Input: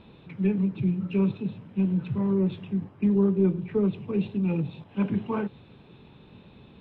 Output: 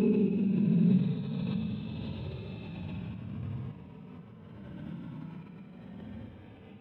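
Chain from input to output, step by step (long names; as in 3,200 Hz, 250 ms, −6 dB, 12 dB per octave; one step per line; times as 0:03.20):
extreme stretch with random phases 21×, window 0.05 s, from 0:01.43
sample-and-hold tremolo
background raised ahead of every attack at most 20 dB per second
level +2.5 dB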